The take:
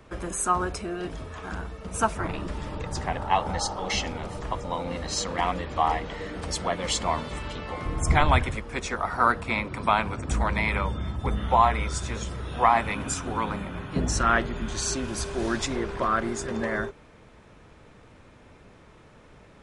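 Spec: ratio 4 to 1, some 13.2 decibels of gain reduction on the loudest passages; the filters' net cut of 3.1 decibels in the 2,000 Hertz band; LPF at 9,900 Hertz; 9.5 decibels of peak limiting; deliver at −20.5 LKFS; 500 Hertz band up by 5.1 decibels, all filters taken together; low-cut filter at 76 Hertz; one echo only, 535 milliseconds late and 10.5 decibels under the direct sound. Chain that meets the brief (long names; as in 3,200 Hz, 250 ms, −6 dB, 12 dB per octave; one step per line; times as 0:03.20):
high-pass filter 76 Hz
low-pass filter 9,900 Hz
parametric band 500 Hz +7 dB
parametric band 2,000 Hz −4.5 dB
downward compressor 4 to 1, threshold −29 dBFS
brickwall limiter −25 dBFS
single-tap delay 535 ms −10.5 dB
level +14.5 dB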